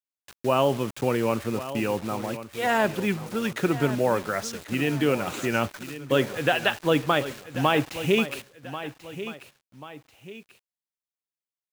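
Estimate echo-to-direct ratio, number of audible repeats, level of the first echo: -12.5 dB, 2, -13.0 dB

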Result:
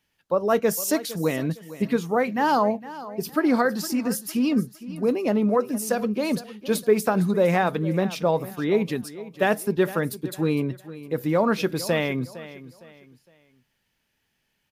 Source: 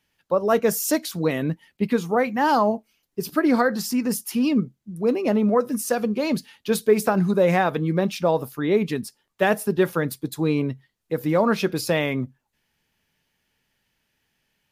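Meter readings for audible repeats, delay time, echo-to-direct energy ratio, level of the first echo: 2, 0.459 s, -15.5 dB, -16.0 dB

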